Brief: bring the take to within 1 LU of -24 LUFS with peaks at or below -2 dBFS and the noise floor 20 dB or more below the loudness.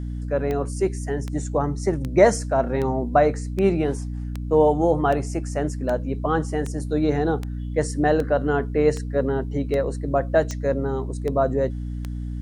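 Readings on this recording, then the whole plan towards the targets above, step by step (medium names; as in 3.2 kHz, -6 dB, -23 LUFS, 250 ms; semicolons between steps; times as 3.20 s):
clicks found 16; hum 60 Hz; highest harmonic 300 Hz; hum level -27 dBFS; loudness -23.0 LUFS; peak level -2.5 dBFS; loudness target -24.0 LUFS
-> de-click; de-hum 60 Hz, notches 5; trim -1 dB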